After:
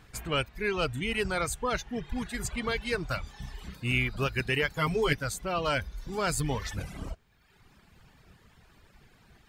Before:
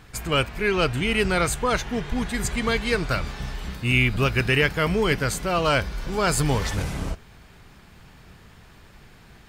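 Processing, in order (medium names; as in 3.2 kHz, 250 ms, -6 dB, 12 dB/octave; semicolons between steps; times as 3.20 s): reverb removal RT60 1.1 s; 4.73–5.13 s: comb 7.4 ms, depth 97%; trim -6.5 dB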